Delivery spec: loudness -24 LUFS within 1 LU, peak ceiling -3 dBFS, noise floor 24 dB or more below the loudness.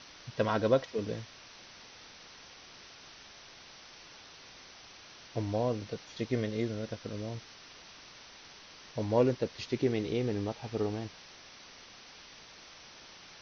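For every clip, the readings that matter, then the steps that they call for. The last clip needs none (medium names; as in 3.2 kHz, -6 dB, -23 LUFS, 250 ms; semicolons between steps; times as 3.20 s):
noise floor -53 dBFS; noise floor target -58 dBFS; loudness -33.5 LUFS; peak level -13.0 dBFS; loudness target -24.0 LUFS
-> noise print and reduce 6 dB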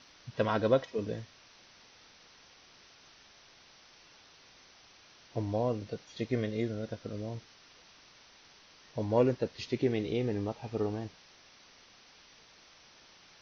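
noise floor -59 dBFS; loudness -33.5 LUFS; peak level -13.0 dBFS; loudness target -24.0 LUFS
-> trim +9.5 dB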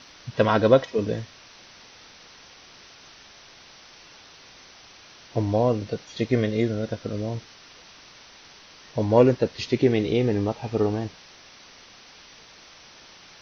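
loudness -24.0 LUFS; peak level -3.5 dBFS; noise floor -50 dBFS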